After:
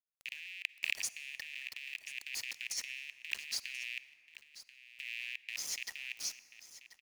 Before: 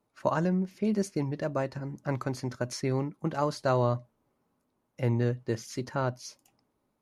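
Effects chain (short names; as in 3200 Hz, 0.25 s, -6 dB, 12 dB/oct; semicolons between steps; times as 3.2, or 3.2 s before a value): rattling part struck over -37 dBFS, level -20 dBFS; gate -51 dBFS, range -6 dB; steep high-pass 1700 Hz 96 dB/oct; frequency shift +62 Hz; sample gate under -46 dBFS; negative-ratio compressor -40 dBFS, ratio -0.5; echo 1.035 s -15.5 dB; on a send at -16 dB: reverb RT60 3.3 s, pre-delay 38 ms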